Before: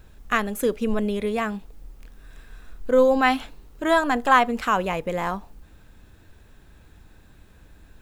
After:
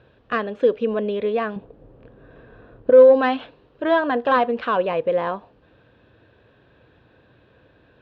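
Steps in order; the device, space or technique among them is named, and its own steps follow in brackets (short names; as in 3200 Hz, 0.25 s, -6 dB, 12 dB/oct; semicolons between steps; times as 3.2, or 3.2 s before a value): overdrive pedal into a guitar cabinet (overdrive pedal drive 13 dB, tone 1700 Hz, clips at -5 dBFS; speaker cabinet 91–3700 Hz, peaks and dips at 120 Hz +8 dB, 190 Hz -4 dB, 510 Hz +6 dB, 840 Hz -7 dB, 1300 Hz -6 dB, 2100 Hz -9 dB); 1.56–2.9 tilt shelf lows +9.5 dB, about 1400 Hz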